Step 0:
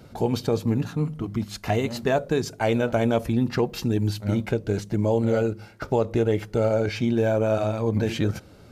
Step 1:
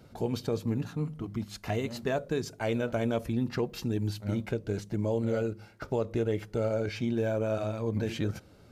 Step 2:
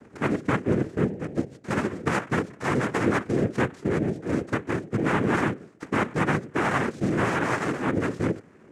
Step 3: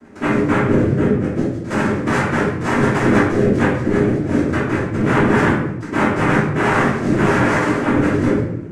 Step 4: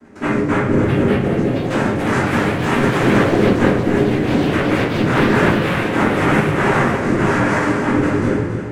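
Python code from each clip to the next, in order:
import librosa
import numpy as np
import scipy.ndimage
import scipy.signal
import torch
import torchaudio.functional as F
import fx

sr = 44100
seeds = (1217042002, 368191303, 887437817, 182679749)

y1 = fx.dynamic_eq(x, sr, hz=810.0, q=4.2, threshold_db=-41.0, ratio=4.0, max_db=-5)
y1 = y1 * 10.0 ** (-7.0 / 20.0)
y2 = scipy.signal.medfilt(y1, 41)
y2 = fx.noise_vocoder(y2, sr, seeds[0], bands=3)
y2 = y2 * 10.0 ** (6.5 / 20.0)
y3 = fx.room_shoebox(y2, sr, seeds[1], volume_m3=210.0, walls='mixed', distance_m=2.9)
y3 = y3 * 10.0 ** (-1.0 / 20.0)
y4 = fx.echo_feedback(y3, sr, ms=275, feedback_pct=51, wet_db=-9)
y4 = fx.echo_pitch(y4, sr, ms=714, semitones=5, count=3, db_per_echo=-6.0)
y4 = y4 * 10.0 ** (-1.0 / 20.0)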